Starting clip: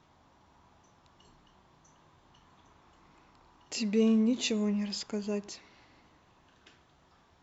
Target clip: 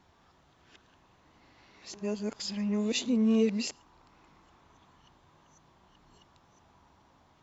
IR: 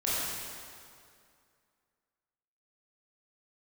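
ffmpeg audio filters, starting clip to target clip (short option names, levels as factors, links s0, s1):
-filter_complex "[0:a]areverse,asplit=2[s0][s1];[1:a]atrim=start_sample=2205,atrim=end_sample=6174[s2];[s1][s2]afir=irnorm=-1:irlink=0,volume=0.0224[s3];[s0][s3]amix=inputs=2:normalize=0"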